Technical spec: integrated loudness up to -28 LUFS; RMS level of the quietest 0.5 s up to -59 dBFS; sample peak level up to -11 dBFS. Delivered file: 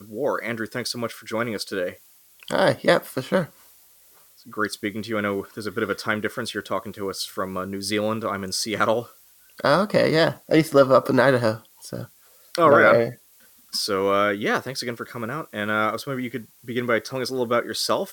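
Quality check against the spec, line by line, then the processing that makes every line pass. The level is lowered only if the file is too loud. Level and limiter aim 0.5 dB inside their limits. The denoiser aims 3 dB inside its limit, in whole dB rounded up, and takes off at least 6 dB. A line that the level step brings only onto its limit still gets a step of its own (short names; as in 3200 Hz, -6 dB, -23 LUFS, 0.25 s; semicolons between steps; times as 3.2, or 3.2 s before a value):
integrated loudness -23.0 LUFS: fail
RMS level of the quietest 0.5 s -54 dBFS: fail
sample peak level -5.0 dBFS: fail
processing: gain -5.5 dB; limiter -11.5 dBFS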